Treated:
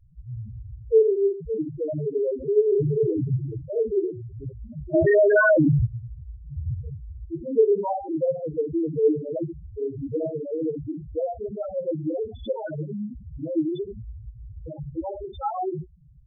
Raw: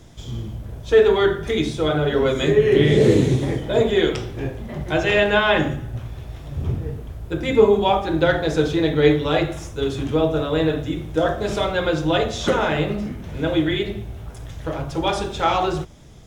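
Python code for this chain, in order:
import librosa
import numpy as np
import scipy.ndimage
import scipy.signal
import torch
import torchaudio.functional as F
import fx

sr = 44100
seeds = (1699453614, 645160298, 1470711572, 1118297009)

y = fx.spec_topn(x, sr, count=2)
y = fx.env_flatten(y, sr, amount_pct=70, at=(4.93, 5.85), fade=0.02)
y = y * librosa.db_to_amplitude(-2.5)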